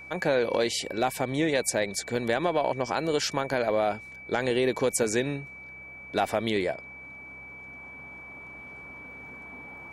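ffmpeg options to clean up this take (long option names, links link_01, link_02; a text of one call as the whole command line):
ffmpeg -i in.wav -af "bandreject=frequency=64.8:width_type=h:width=4,bandreject=frequency=129.6:width_type=h:width=4,bandreject=frequency=194.4:width_type=h:width=4,bandreject=frequency=2300:width=30" out.wav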